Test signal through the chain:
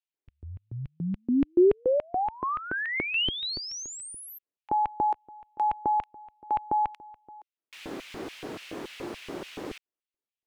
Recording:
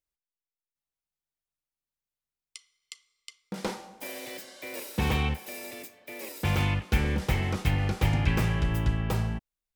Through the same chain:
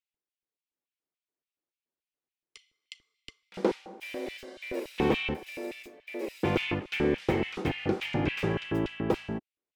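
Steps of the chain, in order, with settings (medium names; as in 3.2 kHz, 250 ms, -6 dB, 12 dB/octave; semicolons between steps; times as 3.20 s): LFO high-pass square 3.5 Hz 350–2600 Hz; RIAA curve playback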